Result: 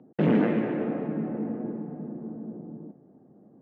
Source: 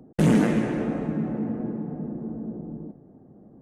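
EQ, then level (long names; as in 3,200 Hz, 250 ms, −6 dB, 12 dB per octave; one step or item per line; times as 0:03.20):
high-pass filter 150 Hz 12 dB per octave
low-pass filter 3,100 Hz 24 dB per octave
dynamic equaliser 460 Hz, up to +4 dB, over −34 dBFS, Q 1
−3.5 dB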